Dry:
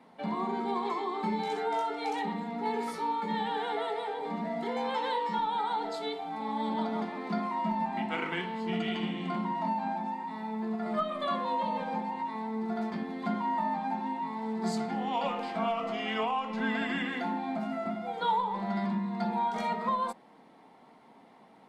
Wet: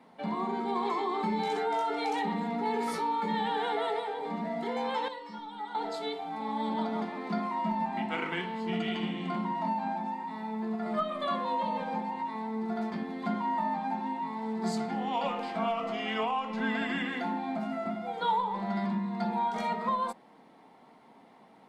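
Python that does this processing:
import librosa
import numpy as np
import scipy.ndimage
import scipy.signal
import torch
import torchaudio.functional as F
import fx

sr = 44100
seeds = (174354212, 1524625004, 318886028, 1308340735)

y = fx.env_flatten(x, sr, amount_pct=50, at=(0.75, 4.0))
y = fx.stiff_resonator(y, sr, f0_hz=61.0, decay_s=0.32, stiffness=0.03, at=(5.08, 5.75))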